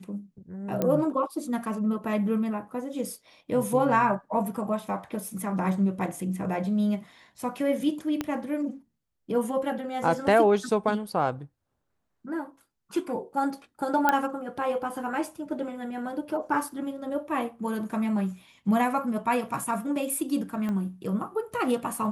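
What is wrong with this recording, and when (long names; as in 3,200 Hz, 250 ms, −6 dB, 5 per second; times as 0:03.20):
0:00.82: click −13 dBFS
0:08.21: click −14 dBFS
0:14.09: click −8 dBFS
0:20.69: click −21 dBFS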